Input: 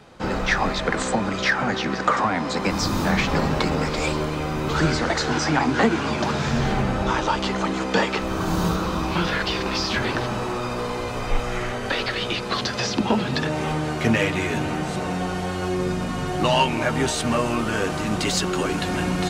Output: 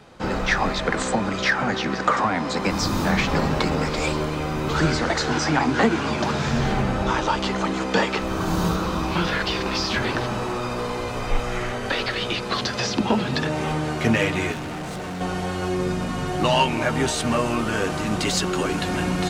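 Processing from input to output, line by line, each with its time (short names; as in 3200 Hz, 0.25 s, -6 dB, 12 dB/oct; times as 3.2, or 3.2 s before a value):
14.52–15.21 hard clip -29 dBFS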